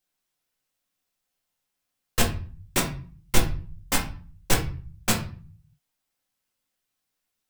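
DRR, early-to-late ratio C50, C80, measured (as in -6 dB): -1.0 dB, 9.5 dB, 14.5 dB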